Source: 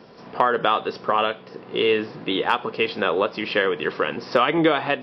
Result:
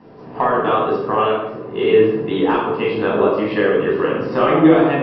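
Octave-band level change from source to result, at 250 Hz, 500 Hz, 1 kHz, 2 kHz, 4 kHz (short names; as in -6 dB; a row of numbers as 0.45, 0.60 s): +9.5, +7.0, +3.0, 0.0, -4.5 dB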